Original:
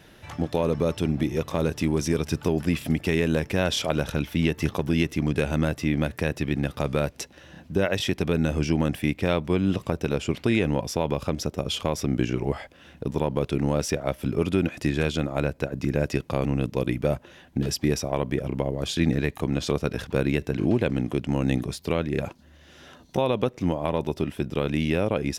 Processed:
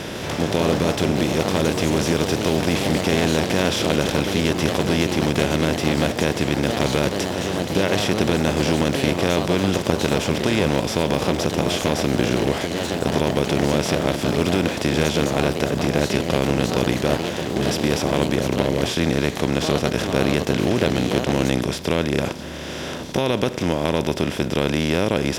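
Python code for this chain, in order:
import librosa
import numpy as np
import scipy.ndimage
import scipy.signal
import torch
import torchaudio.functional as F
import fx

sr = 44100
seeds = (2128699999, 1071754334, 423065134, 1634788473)

y = fx.bin_compress(x, sr, power=0.4)
y = fx.echo_pitch(y, sr, ms=153, semitones=3, count=3, db_per_echo=-6.0)
y = F.gain(torch.from_numpy(y), -2.0).numpy()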